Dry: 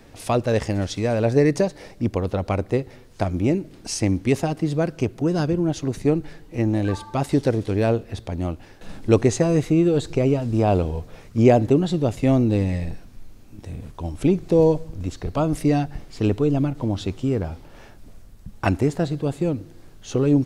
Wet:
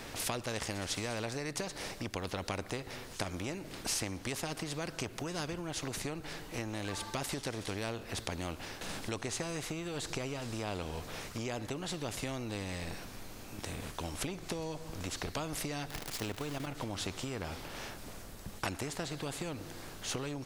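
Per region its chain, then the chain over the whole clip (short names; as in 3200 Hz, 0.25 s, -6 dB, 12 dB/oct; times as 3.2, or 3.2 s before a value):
15.9–16.67 zero-crossing step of -34.5 dBFS + level quantiser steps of 10 dB
whole clip: compressor, threshold -26 dBFS; spectral compressor 2:1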